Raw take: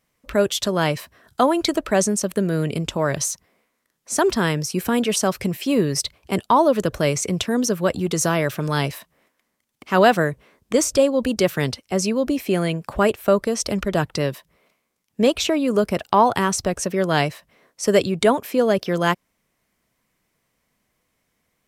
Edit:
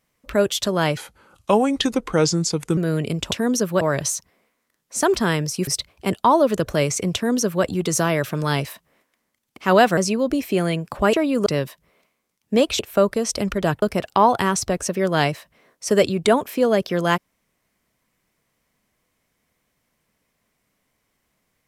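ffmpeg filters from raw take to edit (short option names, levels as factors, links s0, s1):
-filter_complex "[0:a]asplit=11[s0][s1][s2][s3][s4][s5][s6][s7][s8][s9][s10];[s0]atrim=end=0.974[s11];[s1]atrim=start=0.97:end=2.43,asetpts=PTS-STARTPTS,asetrate=35721,aresample=44100[s12];[s2]atrim=start=2.426:end=2.972[s13];[s3]atrim=start=7.398:end=7.902[s14];[s4]atrim=start=2.968:end=4.832[s15];[s5]atrim=start=5.928:end=10.232[s16];[s6]atrim=start=11.938:end=13.102[s17];[s7]atrim=start=15.458:end=15.792[s18];[s8]atrim=start=14.128:end=15.462[s19];[s9]atrim=start=13.098:end=14.132[s20];[s10]atrim=start=15.788[s21];[s11][s12]acrossfade=d=0.004:c1=hsin:c2=hsin[s22];[s22][s13]acrossfade=d=0.004:c1=hsin:c2=hsin[s23];[s23][s14]acrossfade=d=0.004:c1=hsin:c2=hsin[s24];[s24][s15]acrossfade=d=0.004:c1=hsin:c2=hsin[s25];[s25][s16]acrossfade=d=0.004:c1=hsin:c2=hsin[s26];[s26][s17]acrossfade=d=0.004:c1=hsin:c2=hsin[s27];[s27][s18]acrossfade=d=0.004:c1=hsin:c2=hsin[s28];[s28][s19]acrossfade=d=0.004:c1=hsin:c2=hsin[s29];[s29][s20]acrossfade=d=0.004:c1=hsin:c2=hsin[s30];[s30][s21]acrossfade=d=0.004:c1=hsin:c2=hsin"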